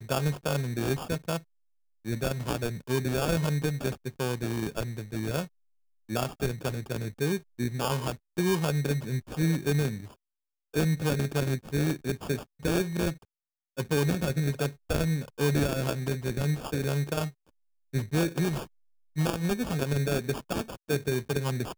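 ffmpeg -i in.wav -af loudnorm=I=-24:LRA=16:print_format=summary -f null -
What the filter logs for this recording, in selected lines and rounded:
Input Integrated:    -30.1 LUFS
Input True Peak:     -11.9 dBTP
Input LRA:             2.3 LU
Input Threshold:     -40.4 LUFS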